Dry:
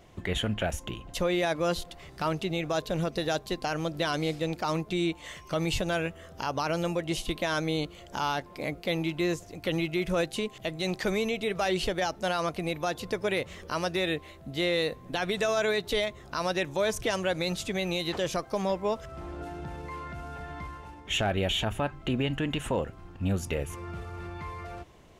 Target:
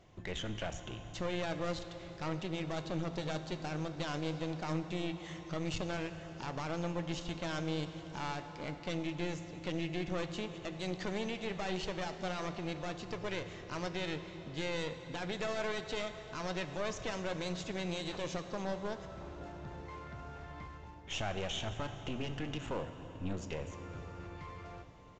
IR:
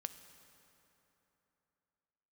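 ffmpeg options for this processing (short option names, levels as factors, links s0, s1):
-filter_complex "[0:a]equalizer=f=140:t=o:w=0.77:g=3,aresample=16000,aeval=exprs='clip(val(0),-1,0.0133)':c=same,aresample=44100[s0];[1:a]atrim=start_sample=2205,asetrate=27342,aresample=44100[s1];[s0][s1]afir=irnorm=-1:irlink=0,volume=0.473"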